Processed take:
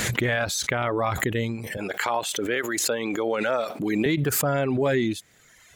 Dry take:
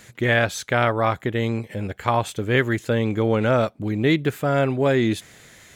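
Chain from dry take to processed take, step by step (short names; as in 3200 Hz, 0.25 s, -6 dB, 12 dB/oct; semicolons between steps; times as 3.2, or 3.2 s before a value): reverb removal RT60 1.1 s; 1.77–4.06 HPF 380 Hz 12 dB/oct; limiter -12.5 dBFS, peak gain reduction 7.5 dB; backwards sustainer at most 21 dB/s; gain -2 dB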